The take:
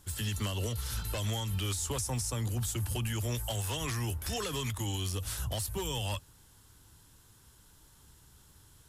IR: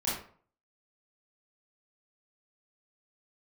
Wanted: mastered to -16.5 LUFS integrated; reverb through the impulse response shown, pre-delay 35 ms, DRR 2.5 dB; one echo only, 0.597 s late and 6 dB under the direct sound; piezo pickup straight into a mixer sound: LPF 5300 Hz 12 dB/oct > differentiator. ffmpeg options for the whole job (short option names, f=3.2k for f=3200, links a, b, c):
-filter_complex "[0:a]aecho=1:1:597:0.501,asplit=2[a][b];[1:a]atrim=start_sample=2205,adelay=35[c];[b][c]afir=irnorm=-1:irlink=0,volume=-9.5dB[d];[a][d]amix=inputs=2:normalize=0,lowpass=5.3k,aderivative,volume=27.5dB"